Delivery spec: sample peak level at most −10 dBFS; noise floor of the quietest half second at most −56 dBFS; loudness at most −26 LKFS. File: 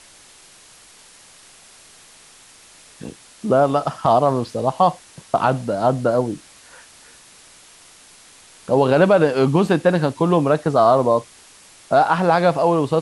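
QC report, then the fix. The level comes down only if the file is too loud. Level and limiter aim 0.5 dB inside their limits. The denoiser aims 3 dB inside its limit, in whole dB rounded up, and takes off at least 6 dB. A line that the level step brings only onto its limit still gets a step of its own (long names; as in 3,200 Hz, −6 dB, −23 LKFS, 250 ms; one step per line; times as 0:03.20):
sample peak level −4.5 dBFS: out of spec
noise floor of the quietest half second −47 dBFS: out of spec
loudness −18.0 LKFS: out of spec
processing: broadband denoise 6 dB, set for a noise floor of −47 dBFS
level −8.5 dB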